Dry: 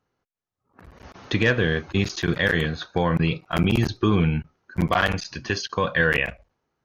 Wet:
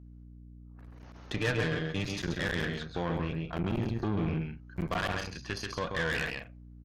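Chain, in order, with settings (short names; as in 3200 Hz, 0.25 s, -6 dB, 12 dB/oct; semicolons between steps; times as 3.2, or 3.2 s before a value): 3.21–4.28 high shelf 2400 Hz -11.5 dB; on a send: loudspeakers at several distances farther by 46 m -5 dB, 61 m -12 dB; on the sum: hum 60 Hz, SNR 15 dB; tube stage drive 19 dB, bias 0.8; 1.37–2.22 comb 6.7 ms, depth 62%; gain -6.5 dB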